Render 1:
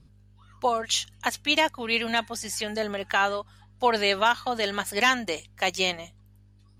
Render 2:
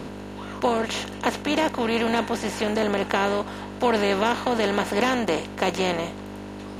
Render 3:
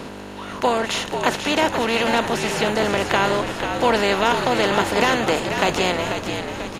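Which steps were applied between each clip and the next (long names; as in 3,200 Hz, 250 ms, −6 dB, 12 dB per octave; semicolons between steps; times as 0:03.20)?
compressor on every frequency bin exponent 0.4; tilt shelving filter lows +9 dB, about 660 Hz; level −2 dB
low-shelf EQ 450 Hz −7 dB; echo with shifted repeats 490 ms, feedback 55%, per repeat −71 Hz, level −7 dB; level +5.5 dB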